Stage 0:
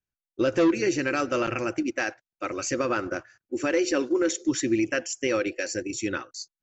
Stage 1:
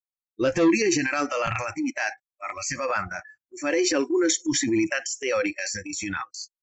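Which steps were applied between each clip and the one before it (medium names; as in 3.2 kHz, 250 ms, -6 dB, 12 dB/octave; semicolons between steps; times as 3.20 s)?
spectral noise reduction 28 dB; transient shaper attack -5 dB, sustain +7 dB; trim +3 dB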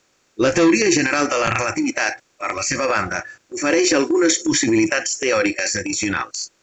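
spectral levelling over time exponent 0.6; trim +3.5 dB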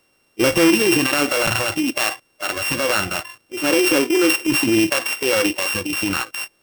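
sorted samples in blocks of 16 samples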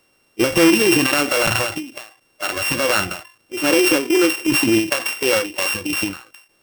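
endings held to a fixed fall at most 130 dB/s; trim +1.5 dB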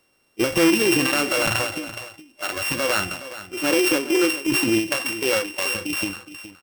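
delay 418 ms -14 dB; trim -4 dB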